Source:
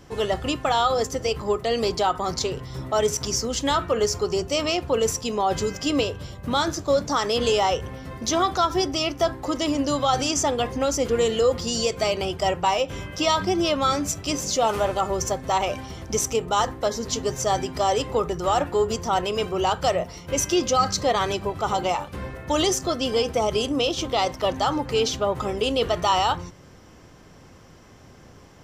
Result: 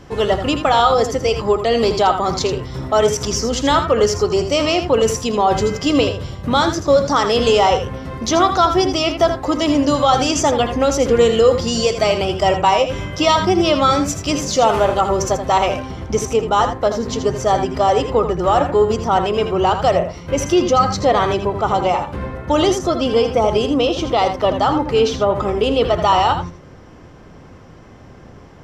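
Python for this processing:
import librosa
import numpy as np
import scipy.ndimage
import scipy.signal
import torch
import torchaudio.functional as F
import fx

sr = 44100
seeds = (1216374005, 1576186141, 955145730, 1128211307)

y = fx.lowpass(x, sr, hz=fx.steps((0.0, 4000.0), (15.79, 1900.0)), slope=6)
y = y + 10.0 ** (-9.0 / 20.0) * np.pad(y, (int(81 * sr / 1000.0), 0))[:len(y)]
y = y * 10.0 ** (7.5 / 20.0)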